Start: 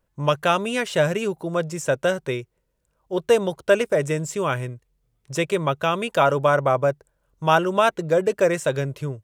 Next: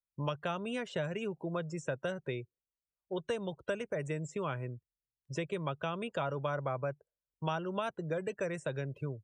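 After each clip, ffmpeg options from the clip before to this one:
-filter_complex "[0:a]afftdn=nr=27:nf=-38,acrossover=split=160|1300|4500[a][b][c][d];[a]acompressor=threshold=-36dB:ratio=4[e];[b]acompressor=threshold=-30dB:ratio=4[f];[c]acompressor=threshold=-39dB:ratio=4[g];[d]acompressor=threshold=-52dB:ratio=4[h];[e][f][g][h]amix=inputs=4:normalize=0,volume=-6dB"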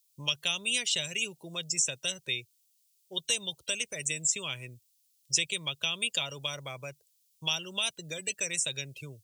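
-af "lowshelf=f=120:g=5.5,aexciter=amount=9.9:drive=5.9:freq=2.3k,highshelf=f=2.3k:g=11,volume=-8.5dB"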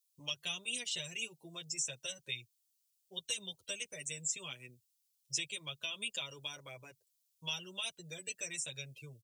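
-filter_complex "[0:a]asplit=2[a][b];[b]adelay=7.8,afreqshift=-0.28[c];[a][c]amix=inputs=2:normalize=1,volume=-6dB"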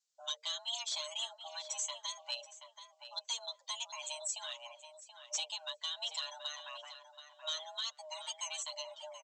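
-filter_complex "[0:a]aresample=16000,asoftclip=type=tanh:threshold=-30.5dB,aresample=44100,afreqshift=460,asplit=2[a][b];[b]adelay=729,lowpass=f=2.4k:p=1,volume=-8dB,asplit=2[c][d];[d]adelay=729,lowpass=f=2.4k:p=1,volume=0.23,asplit=2[e][f];[f]adelay=729,lowpass=f=2.4k:p=1,volume=0.23[g];[a][c][e][g]amix=inputs=4:normalize=0,volume=2dB"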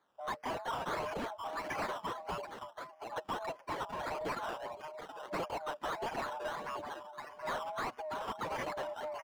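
-filter_complex "[0:a]acrossover=split=1400[a][b];[b]acrusher=samples=16:mix=1:aa=0.000001:lfo=1:lforange=9.6:lforate=1.6[c];[a][c]amix=inputs=2:normalize=0,asplit=2[d][e];[e]highpass=f=720:p=1,volume=22dB,asoftclip=type=tanh:threshold=-26dB[f];[d][f]amix=inputs=2:normalize=0,lowpass=f=2.3k:p=1,volume=-6dB,volume=-2.5dB"

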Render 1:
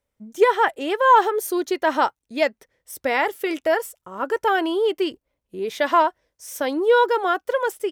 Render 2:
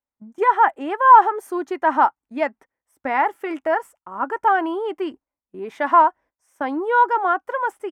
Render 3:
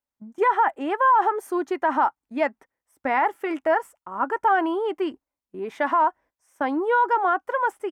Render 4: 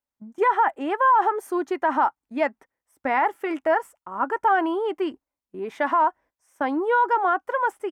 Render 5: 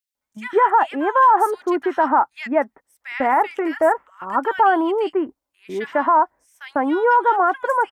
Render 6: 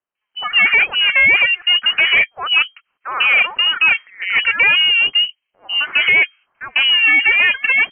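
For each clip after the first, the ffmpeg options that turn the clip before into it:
-af "firequalizer=gain_entry='entry(140,0);entry(260,9);entry(480,-1);entry(820,13);entry(3900,-10);entry(8500,-5);entry(14000,-13)':delay=0.05:min_phase=1,agate=range=-13dB:threshold=-37dB:ratio=16:detection=peak,volume=-7dB"
-af "alimiter=limit=-12dB:level=0:latency=1:release=29"
-af anull
-filter_complex "[0:a]acrossover=split=2000[a][b];[a]adelay=150[c];[c][b]amix=inputs=2:normalize=0,volume=5dB"
-af "asoftclip=type=tanh:threshold=-17.5dB,lowpass=f=2.7k:t=q:w=0.5098,lowpass=f=2.7k:t=q:w=0.6013,lowpass=f=2.7k:t=q:w=0.9,lowpass=f=2.7k:t=q:w=2.563,afreqshift=-3200,volume=8.5dB"

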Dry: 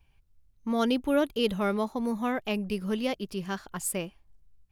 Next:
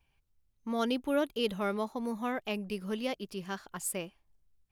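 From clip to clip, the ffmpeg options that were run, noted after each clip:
-af "lowshelf=f=150:g=-8,volume=-3.5dB"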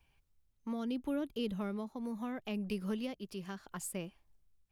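-filter_complex "[0:a]acrossover=split=280[a][b];[b]acompressor=threshold=-41dB:ratio=10[c];[a][c]amix=inputs=2:normalize=0,tremolo=f=0.74:d=0.38,volume=2dB"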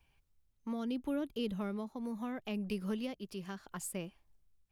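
-af anull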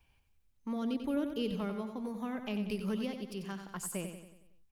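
-af "aecho=1:1:92|184|276|368|460|552:0.398|0.199|0.0995|0.0498|0.0249|0.0124,volume=1.5dB"

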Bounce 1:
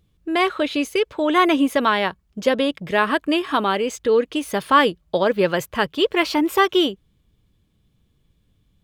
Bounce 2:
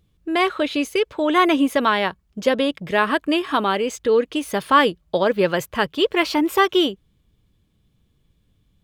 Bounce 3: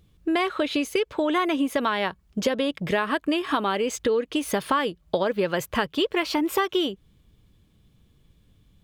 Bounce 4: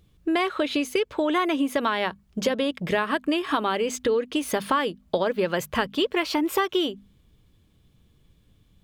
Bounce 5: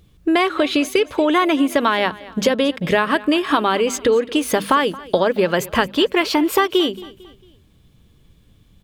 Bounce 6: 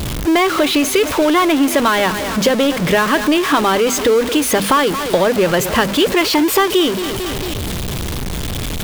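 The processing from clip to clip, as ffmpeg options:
-af anull
-af "acompressor=threshold=-25dB:ratio=6,volume=4dB"
-af "bandreject=f=50:t=h:w=6,bandreject=f=100:t=h:w=6,bandreject=f=150:t=h:w=6,bandreject=f=200:t=h:w=6,bandreject=f=250:t=h:w=6"
-af "aecho=1:1:225|450|675:0.106|0.0424|0.0169,volume=7dB"
-af "aeval=exprs='val(0)+0.5*0.158*sgn(val(0))':c=same"

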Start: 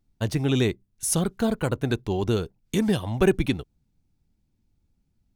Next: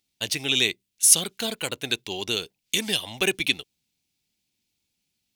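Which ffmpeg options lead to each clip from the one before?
-af "highpass=f=640:p=1,highshelf=f=1.9k:t=q:w=1.5:g=11,volume=-1dB"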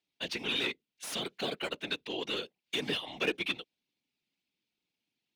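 -filter_complex "[0:a]volume=21dB,asoftclip=hard,volume=-21dB,afftfilt=real='hypot(re,im)*cos(2*PI*random(0))':imag='hypot(re,im)*sin(2*PI*random(1))':win_size=512:overlap=0.75,acrossover=split=170 4200:gain=0.178 1 0.126[a][b][c];[a][b][c]amix=inputs=3:normalize=0,volume=2.5dB"

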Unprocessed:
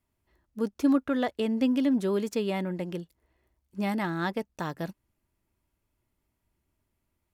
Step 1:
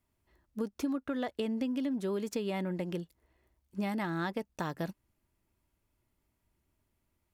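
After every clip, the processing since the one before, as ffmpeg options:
-af "acompressor=threshold=-30dB:ratio=10"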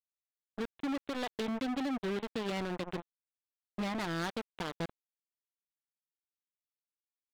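-af "aresample=8000,acrusher=bits=4:mix=0:aa=0.5,aresample=44100,asoftclip=type=hard:threshold=-36dB,volume=6dB"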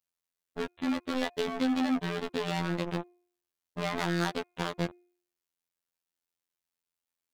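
-af "afftfilt=real='hypot(re,im)*cos(PI*b)':imag='0':win_size=2048:overlap=0.75,bandreject=f=353.8:t=h:w=4,bandreject=f=707.6:t=h:w=4,bandreject=f=1.0614k:t=h:w=4,bandreject=f=1.4152k:t=h:w=4,bandreject=f=1.769k:t=h:w=4,bandreject=f=2.1228k:t=h:w=4,bandreject=f=2.4766k:t=h:w=4,volume=8.5dB"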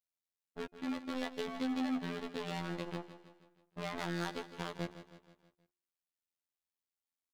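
-af "aecho=1:1:159|318|477|636|795:0.224|0.114|0.0582|0.0297|0.0151,volume=-8dB"

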